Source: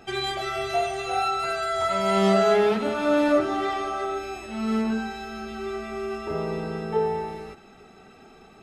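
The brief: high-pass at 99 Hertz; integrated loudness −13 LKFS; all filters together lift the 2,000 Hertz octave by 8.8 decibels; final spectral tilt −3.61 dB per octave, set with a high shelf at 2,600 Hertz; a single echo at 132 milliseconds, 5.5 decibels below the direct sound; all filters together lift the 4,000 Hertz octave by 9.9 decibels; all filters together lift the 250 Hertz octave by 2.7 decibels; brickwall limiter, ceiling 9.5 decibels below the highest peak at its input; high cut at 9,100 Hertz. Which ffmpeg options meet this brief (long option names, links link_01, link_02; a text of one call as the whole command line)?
ffmpeg -i in.wav -af "highpass=99,lowpass=9100,equalizer=frequency=250:width_type=o:gain=3.5,equalizer=frequency=2000:width_type=o:gain=6.5,highshelf=frequency=2600:gain=8,equalizer=frequency=4000:width_type=o:gain=3.5,alimiter=limit=-14.5dB:level=0:latency=1,aecho=1:1:132:0.531,volume=10dB" out.wav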